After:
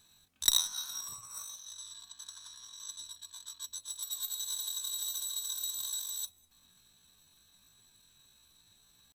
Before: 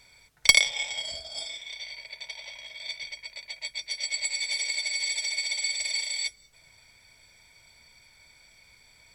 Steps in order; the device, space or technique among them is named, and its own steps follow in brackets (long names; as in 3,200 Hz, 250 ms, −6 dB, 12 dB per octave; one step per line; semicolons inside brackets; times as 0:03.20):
chipmunk voice (pitch shifter +9.5 semitones)
level −7 dB